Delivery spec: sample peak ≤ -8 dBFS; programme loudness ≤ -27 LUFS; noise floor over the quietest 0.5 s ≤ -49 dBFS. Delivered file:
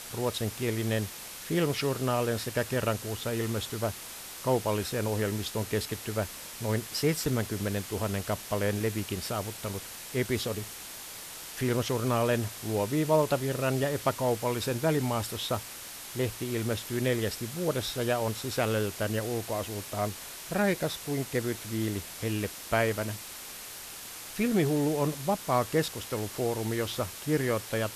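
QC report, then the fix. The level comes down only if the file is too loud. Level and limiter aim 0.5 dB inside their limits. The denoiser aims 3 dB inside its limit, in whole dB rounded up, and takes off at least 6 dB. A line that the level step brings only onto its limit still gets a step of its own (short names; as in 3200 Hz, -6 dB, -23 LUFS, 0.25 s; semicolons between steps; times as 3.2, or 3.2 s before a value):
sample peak -11.5 dBFS: OK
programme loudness -30.5 LUFS: OK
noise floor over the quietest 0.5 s -43 dBFS: fail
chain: denoiser 9 dB, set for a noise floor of -43 dBFS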